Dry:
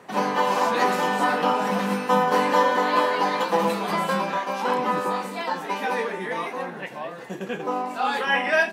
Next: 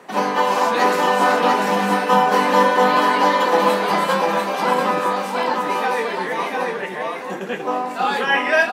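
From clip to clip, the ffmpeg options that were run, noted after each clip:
ffmpeg -i in.wav -af "highpass=190,aecho=1:1:694:0.668,volume=4dB" out.wav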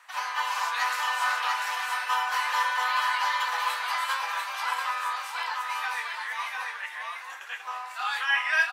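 ffmpeg -i in.wav -af "highpass=frequency=1100:width=0.5412,highpass=frequency=1100:width=1.3066,volume=-5dB" out.wav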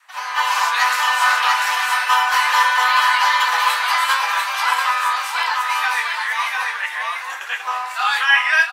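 ffmpeg -i in.wav -af "adynamicequalizer=threshold=0.00631:dfrequency=400:dqfactor=0.75:tfrequency=400:tqfactor=0.75:attack=5:release=100:ratio=0.375:range=2:mode=cutabove:tftype=bell,dynaudnorm=framelen=130:gausssize=5:maxgain=11dB,volume=1dB" out.wav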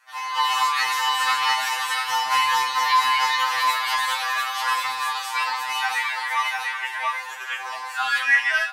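ffmpeg -i in.wav -filter_complex "[0:a]asplit=2[link_01][link_02];[link_02]asoftclip=type=tanh:threshold=-14dB,volume=-8dB[link_03];[link_01][link_03]amix=inputs=2:normalize=0,afftfilt=real='re*2.45*eq(mod(b,6),0)':imag='im*2.45*eq(mod(b,6),0)':win_size=2048:overlap=0.75,volume=-3.5dB" out.wav

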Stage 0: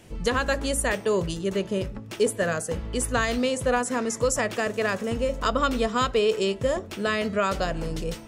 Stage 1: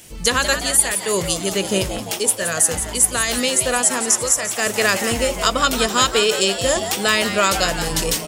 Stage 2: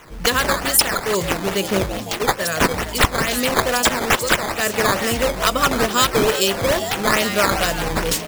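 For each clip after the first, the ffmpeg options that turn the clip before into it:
ffmpeg -i in.wav -filter_complex "[0:a]crystalizer=i=6.5:c=0,dynaudnorm=framelen=130:gausssize=3:maxgain=7dB,asplit=8[link_01][link_02][link_03][link_04][link_05][link_06][link_07][link_08];[link_02]adelay=173,afreqshift=130,volume=-9.5dB[link_09];[link_03]adelay=346,afreqshift=260,volume=-14.2dB[link_10];[link_04]adelay=519,afreqshift=390,volume=-19dB[link_11];[link_05]adelay=692,afreqshift=520,volume=-23.7dB[link_12];[link_06]adelay=865,afreqshift=650,volume=-28.4dB[link_13];[link_07]adelay=1038,afreqshift=780,volume=-33.2dB[link_14];[link_08]adelay=1211,afreqshift=910,volume=-37.9dB[link_15];[link_01][link_09][link_10][link_11][link_12][link_13][link_14][link_15]amix=inputs=8:normalize=0,volume=-1dB" out.wav
ffmpeg -i in.wav -af "acrusher=samples=9:mix=1:aa=0.000001:lfo=1:lforange=14.4:lforate=2.3" out.wav

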